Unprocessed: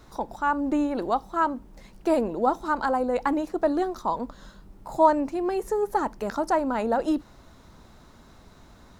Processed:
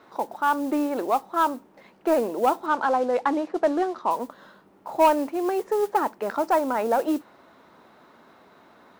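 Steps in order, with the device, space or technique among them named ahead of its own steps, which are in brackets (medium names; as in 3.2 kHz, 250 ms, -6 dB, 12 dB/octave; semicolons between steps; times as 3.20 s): carbon microphone (band-pass 320–2700 Hz; saturation -14 dBFS, distortion -17 dB; modulation noise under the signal 23 dB); 2.66–4.11 s: low-pass 5.8 kHz 12 dB/octave; trim +3.5 dB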